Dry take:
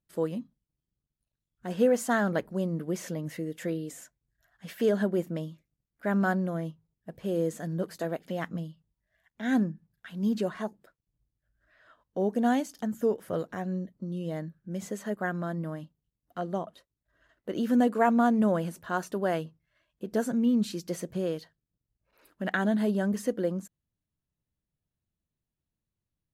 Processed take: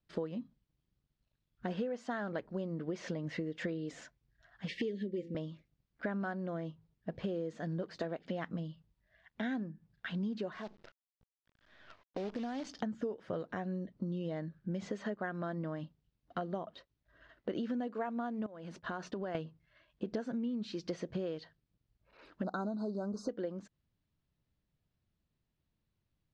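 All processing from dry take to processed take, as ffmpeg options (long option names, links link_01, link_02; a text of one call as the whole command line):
ffmpeg -i in.wav -filter_complex "[0:a]asettb=1/sr,asplit=3[link_01][link_02][link_03];[link_01]atrim=end=4.684[link_04];[link_02]atrim=start=4.68:end=5.35,asetpts=PTS-STARTPTS,afade=type=in:duration=0.004:curve=qsin,afade=type=out:start_time=0.666:duration=0.004:curve=qsin,asuperstop=centerf=990:order=20:qfactor=0.78,bandreject=frequency=168.4:width_type=h:width=4,bandreject=frequency=336.8:width_type=h:width=4,bandreject=frequency=505.2:width_type=h:width=4,bandreject=frequency=673.6:width_type=h:width=4,bandreject=frequency=842:width_type=h:width=4,bandreject=frequency=1010.4:width_type=h:width=4,bandreject=frequency=1178.8:width_type=h:width=4,bandreject=frequency=1347.2:width_type=h:width=4,bandreject=frequency=1515.6:width_type=h:width=4[link_05];[link_03]atrim=start=5.346[link_06];[link_04][link_05]acrossfade=duration=0.004:curve1=hsin:curve2=qsin[link_07];[link_07][link_06]acrossfade=duration=0.004:curve1=qsin:curve2=hsin,asettb=1/sr,asplit=3[link_08][link_09][link_10];[link_08]atrim=end=10.524[link_11];[link_09]atrim=start=10.52:end=12.67,asetpts=PTS-STARTPTS,afade=type=in:duration=0.004:curve=qsin,afade=type=out:start_time=2.146:duration=0.004:curve=qsin,lowshelf=frequency=76:gain=-5,acompressor=threshold=-40dB:ratio=4:attack=3.2:release=140:knee=1:detection=peak,acrusher=bits=9:dc=4:mix=0:aa=0.000001[link_12];[link_10]atrim=start=12.666[link_13];[link_11][link_12]acrossfade=duration=0.004:curve1=hsin:curve2=qsin[link_14];[link_14][link_13]acrossfade=duration=0.004:curve1=qsin:curve2=hsin,asettb=1/sr,asplit=3[link_15][link_16][link_17];[link_15]atrim=end=18.464[link_18];[link_16]atrim=start=18.46:end=19.35,asetpts=PTS-STARTPTS,afade=type=in:duration=0.004:curve=qsin,afade=type=out:start_time=0.886:duration=0.004:curve=qsin,agate=range=-33dB:threshold=-46dB:ratio=3:release=100:detection=peak,acompressor=threshold=-40dB:ratio=5:attack=3.2:release=140:knee=1:detection=peak[link_19];[link_17]atrim=start=19.346[link_20];[link_18][link_19]acrossfade=duration=0.004:curve1=hsin:curve2=qsin[link_21];[link_21][link_20]acrossfade=duration=0.004:curve1=qsin:curve2=hsin,asettb=1/sr,asplit=3[link_22][link_23][link_24];[link_22]atrim=end=22.434[link_25];[link_23]atrim=start=22.43:end=23.29,asetpts=PTS-STARTPTS,afade=type=in:duration=0.004:curve=qsin,afade=type=out:start_time=0.856:duration=0.004:curve=qsin,asuperstop=centerf=2400:order=20:qfactor=0.98,highshelf=frequency=6500:gain=8[link_26];[link_24]atrim=start=23.286[link_27];[link_25][link_26]acrossfade=duration=0.004:curve1=hsin:curve2=qsin[link_28];[link_28][link_27]acrossfade=duration=0.004:curve1=qsin:curve2=hsin,lowpass=frequency=4900:width=0.5412,lowpass=frequency=4900:width=1.3066,adynamicequalizer=threshold=0.00708:dfrequency=180:dqfactor=2.9:tfrequency=180:tqfactor=2.9:attack=5:release=100:ratio=0.375:range=3.5:mode=cutabove:tftype=bell,acompressor=threshold=-39dB:ratio=12,volume=5dB" out.wav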